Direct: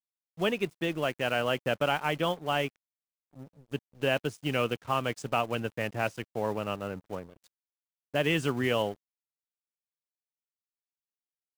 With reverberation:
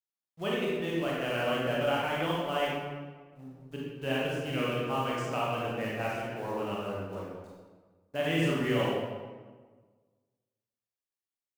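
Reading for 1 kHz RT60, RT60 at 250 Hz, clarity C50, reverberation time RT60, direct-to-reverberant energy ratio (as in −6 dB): 1.4 s, 1.6 s, −2.0 dB, 1.4 s, −5.5 dB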